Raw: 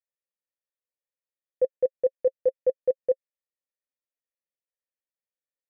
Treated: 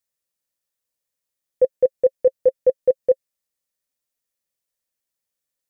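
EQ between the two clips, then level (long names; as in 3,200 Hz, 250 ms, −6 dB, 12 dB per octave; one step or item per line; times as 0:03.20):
bass and treble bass +4 dB, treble +7 dB
+6.5 dB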